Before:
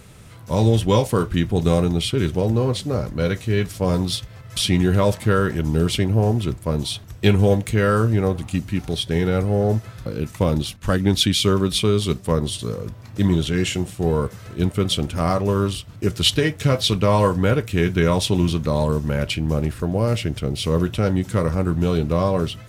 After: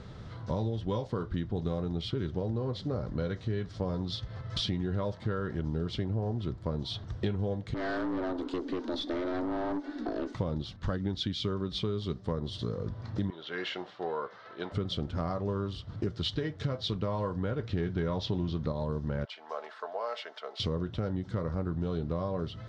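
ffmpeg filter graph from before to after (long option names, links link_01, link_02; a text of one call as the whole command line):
ffmpeg -i in.wav -filter_complex "[0:a]asettb=1/sr,asplit=3[link_01][link_02][link_03];[link_01]atrim=end=7.744[link_04];[link_02]atrim=start=7.74:end=10.35,asetpts=PTS-STARTPTS,afade=type=in:duration=0.004:curve=qsin,afade=type=out:start_time=2.606:duration=0.004:curve=qsin,afreqshift=180,aeval=exprs='(tanh(15.8*val(0)+0.3)-tanh(0.3))/15.8':channel_layout=same[link_05];[link_03]atrim=start=10.346[link_06];[link_04][link_05]acrossfade=duration=0.004:curve1=hsin:curve2=qsin[link_07];[link_07][link_06]acrossfade=duration=0.004:curve1=qsin:curve2=hsin,asettb=1/sr,asplit=3[link_08][link_09][link_10];[link_08]atrim=end=13.304[link_11];[link_09]atrim=start=13.3:end=14.72,asetpts=PTS-STARTPTS,afade=type=in:duration=0.004:curve=qsin,afade=type=out:start_time=1.416:duration=0.004:curve=qsin,highpass=740,lowpass=5000,aemphasis=mode=reproduction:type=50fm[link_12];[link_10]atrim=start=14.716[link_13];[link_11][link_12]acrossfade=duration=0.004:curve1=hsin:curve2=qsin[link_14];[link_14][link_13]acrossfade=duration=0.004:curve1=qsin:curve2=hsin,asettb=1/sr,asplit=3[link_15][link_16][link_17];[link_15]atrim=end=17.594[link_18];[link_16]atrim=start=17.59:end=18.72,asetpts=PTS-STARTPTS,afade=type=in:duration=0.004:curve=qsin,afade=type=out:start_time=1.126:duration=0.004:curve=qsin,lowpass=frequency=6500:width=0.5412,lowpass=frequency=6500:width=1.3066,acontrast=42[link_19];[link_17]atrim=start=18.716[link_20];[link_18][link_19]acrossfade=duration=0.004:curve1=hsin:curve2=qsin[link_21];[link_21][link_20]acrossfade=duration=0.004:curve1=qsin:curve2=hsin,asettb=1/sr,asplit=3[link_22][link_23][link_24];[link_22]atrim=end=19.254[link_25];[link_23]atrim=start=19.25:end=20.6,asetpts=PTS-STARTPTS,afade=type=in:duration=0.004:curve=qsin,afade=type=out:start_time=1.346:duration=0.004:curve=qsin,highpass=frequency=710:width=0.5412,highpass=frequency=710:width=1.3066,highshelf=frequency=2200:gain=-9,aecho=1:1:4.6:0.47,atrim=end_sample=59535[link_26];[link_24]atrim=start=20.596[link_27];[link_25][link_26]acrossfade=duration=0.004:curve1=hsin:curve2=qsin[link_28];[link_28][link_27]acrossfade=duration=0.004:curve1=qsin:curve2=hsin,lowpass=frequency=4500:width=0.5412,lowpass=frequency=4500:width=1.3066,equalizer=frequency=2500:width=2.6:gain=-12,acompressor=threshold=-30dB:ratio=6" out.wav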